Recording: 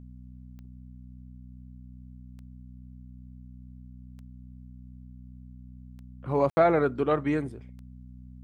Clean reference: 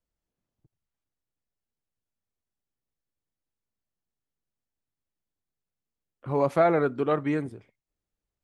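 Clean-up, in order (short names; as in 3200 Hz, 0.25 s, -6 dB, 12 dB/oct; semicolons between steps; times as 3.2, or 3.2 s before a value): de-click; de-hum 62.4 Hz, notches 4; room tone fill 6.5–6.57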